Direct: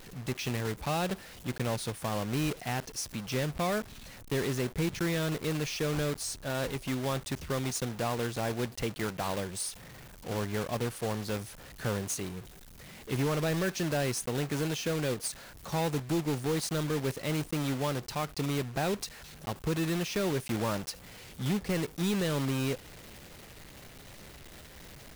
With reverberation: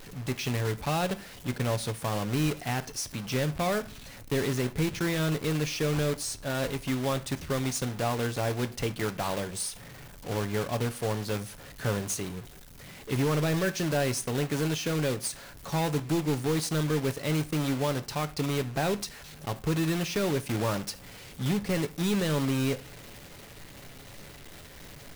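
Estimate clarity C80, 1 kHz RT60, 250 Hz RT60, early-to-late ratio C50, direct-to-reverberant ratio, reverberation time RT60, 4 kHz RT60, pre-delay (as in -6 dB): 24.0 dB, 0.40 s, 0.55 s, 19.5 dB, 10.0 dB, 0.40 s, 0.35 s, 7 ms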